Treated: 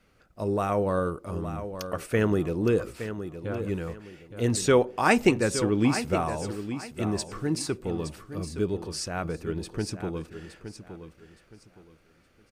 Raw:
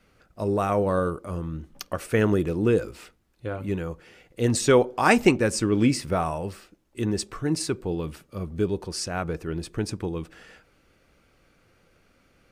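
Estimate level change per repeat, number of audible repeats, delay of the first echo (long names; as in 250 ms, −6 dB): −11.0 dB, 3, 867 ms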